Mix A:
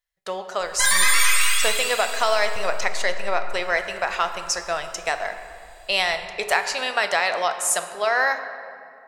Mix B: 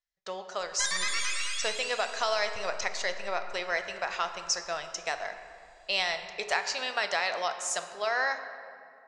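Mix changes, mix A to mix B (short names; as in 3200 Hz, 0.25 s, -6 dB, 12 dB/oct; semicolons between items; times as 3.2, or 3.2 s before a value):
background: send -8.5 dB; master: add ladder low-pass 7200 Hz, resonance 40%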